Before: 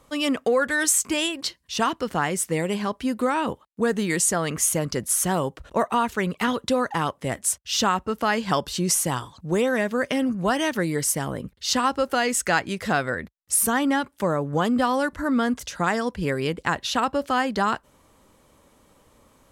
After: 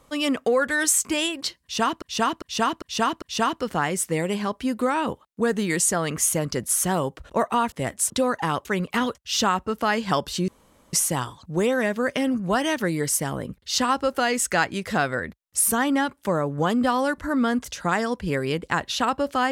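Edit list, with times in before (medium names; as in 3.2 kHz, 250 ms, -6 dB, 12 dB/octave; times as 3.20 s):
1.62–2.02 s: loop, 5 plays
6.12–6.62 s: swap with 7.17–7.55 s
8.88 s: insert room tone 0.45 s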